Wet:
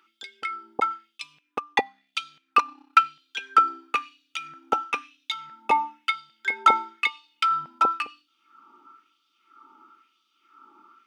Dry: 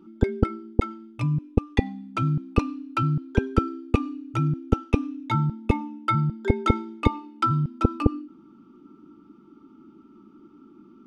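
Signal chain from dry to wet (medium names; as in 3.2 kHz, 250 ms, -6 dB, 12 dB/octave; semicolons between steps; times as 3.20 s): 1.18–2.99 s: transient shaper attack +3 dB, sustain -9 dB; LFO high-pass sine 1 Hz 850–3600 Hz; trim +5 dB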